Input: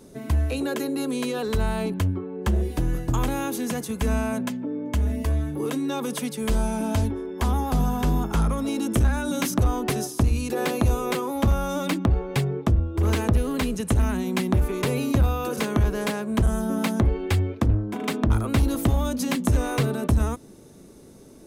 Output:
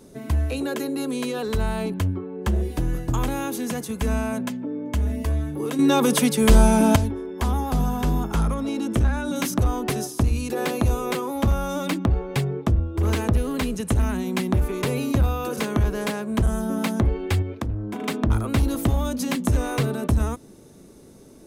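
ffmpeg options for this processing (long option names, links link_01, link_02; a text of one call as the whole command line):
ffmpeg -i in.wav -filter_complex "[0:a]asettb=1/sr,asplit=3[link_01][link_02][link_03];[link_01]atrim=end=8.544[link_04];[link_02]atrim=start=8.54:end=9.36,asetpts=PTS-STARTPTS,afade=type=in:duration=0.004:curve=qsin,afade=type=out:start_time=0.816:duration=0.004:curve=qsin,highshelf=frequency=8100:gain=-11.5[link_05];[link_03]atrim=start=9.356[link_06];[link_04][link_05]acrossfade=duration=0.004:curve1=hsin:curve2=qsin[link_07];[link_07][link_06]acrossfade=duration=0.004:curve1=qsin:curve2=hsin,asettb=1/sr,asplit=3[link_08][link_09][link_10];[link_08]atrim=end=17.424[link_11];[link_09]atrim=start=17.42:end=18.01,asetpts=PTS-STARTPTS,afade=type=in:duration=0.004:curve=qsin,afade=type=out:start_time=0.586:duration=0.004:curve=qsin,acompressor=threshold=-25dB:ratio=3:attack=3.2:release=140:knee=1:detection=peak[link_12];[link_10]atrim=start=18.006[link_13];[link_11][link_12]acrossfade=duration=0.004:curve1=hsin:curve2=qsin[link_14];[link_14][link_13]acrossfade=duration=0.004:curve1=qsin:curve2=hsin,asplit=3[link_15][link_16][link_17];[link_15]atrim=end=5.792[link_18];[link_16]atrim=start=5.788:end=6.962,asetpts=PTS-STARTPTS,volume=9.5dB[link_19];[link_17]atrim=start=6.958[link_20];[link_18][link_19]acrossfade=duration=0.004:curve1=hsin:curve2=hsin[link_21];[link_21][link_20]acrossfade=duration=0.004:curve1=hsin:curve2=hsin" out.wav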